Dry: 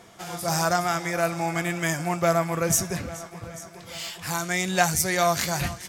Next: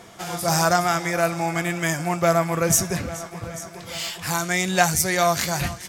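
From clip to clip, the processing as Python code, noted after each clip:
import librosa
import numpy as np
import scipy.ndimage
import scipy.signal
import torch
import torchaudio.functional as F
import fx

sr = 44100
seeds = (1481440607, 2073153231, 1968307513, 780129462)

y = fx.rider(x, sr, range_db=5, speed_s=2.0)
y = y * 10.0 ** (2.0 / 20.0)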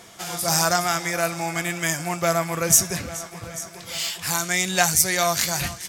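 y = fx.high_shelf(x, sr, hz=2100.0, db=8.5)
y = y * 10.0 ** (-4.0 / 20.0)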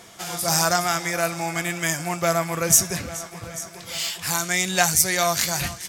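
y = x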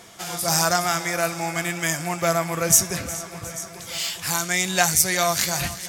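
y = fx.echo_feedback(x, sr, ms=360, feedback_pct=57, wet_db=-18.0)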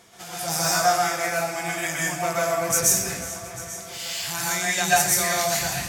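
y = fx.rev_plate(x, sr, seeds[0], rt60_s=0.59, hf_ratio=0.95, predelay_ms=110, drr_db=-5.5)
y = y * 10.0 ** (-7.5 / 20.0)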